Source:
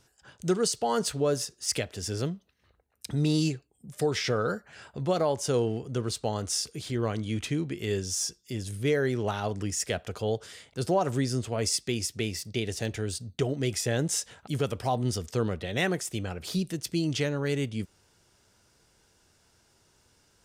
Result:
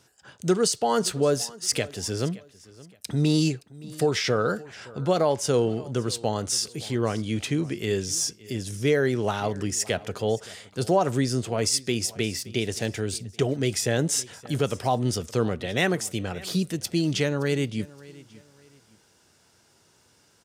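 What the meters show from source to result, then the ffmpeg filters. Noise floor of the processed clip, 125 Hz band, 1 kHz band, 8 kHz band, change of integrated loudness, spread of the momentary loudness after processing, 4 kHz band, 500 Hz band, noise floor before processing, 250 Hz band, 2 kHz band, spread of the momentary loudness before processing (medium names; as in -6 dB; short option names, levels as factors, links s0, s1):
-62 dBFS, +2.5 dB, +4.0 dB, +4.0 dB, +3.5 dB, 8 LU, +4.0 dB, +4.0 dB, -66 dBFS, +4.0 dB, +4.0 dB, 8 LU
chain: -filter_complex "[0:a]highpass=100,asplit=2[s0][s1];[s1]aecho=0:1:570|1140:0.0891|0.0285[s2];[s0][s2]amix=inputs=2:normalize=0,volume=1.58"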